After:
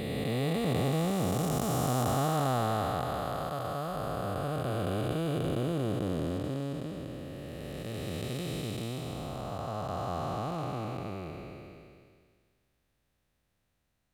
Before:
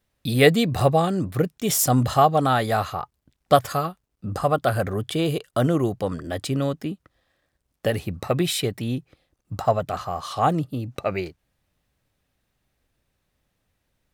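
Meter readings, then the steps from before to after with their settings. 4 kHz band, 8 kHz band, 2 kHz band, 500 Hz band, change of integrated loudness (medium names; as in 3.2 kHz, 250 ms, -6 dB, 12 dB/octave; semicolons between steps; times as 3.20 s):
-10.5 dB, -12.5 dB, -12.0 dB, -10.0 dB, -10.0 dB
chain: spectral blur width 1120 ms; trim -2.5 dB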